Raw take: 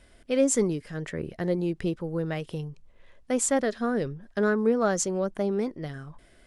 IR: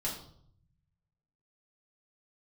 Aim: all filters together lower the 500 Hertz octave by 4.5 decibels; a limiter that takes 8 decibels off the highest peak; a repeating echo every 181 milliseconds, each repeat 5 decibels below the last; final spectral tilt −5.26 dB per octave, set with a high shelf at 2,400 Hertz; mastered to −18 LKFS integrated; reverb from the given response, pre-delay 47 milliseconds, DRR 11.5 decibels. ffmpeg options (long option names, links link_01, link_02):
-filter_complex "[0:a]equalizer=frequency=500:width_type=o:gain=-5,highshelf=frequency=2400:gain=-6.5,alimiter=limit=-23.5dB:level=0:latency=1,aecho=1:1:181|362|543|724|905|1086|1267:0.562|0.315|0.176|0.0988|0.0553|0.031|0.0173,asplit=2[link_01][link_02];[1:a]atrim=start_sample=2205,adelay=47[link_03];[link_02][link_03]afir=irnorm=-1:irlink=0,volume=-14.5dB[link_04];[link_01][link_04]amix=inputs=2:normalize=0,volume=13.5dB"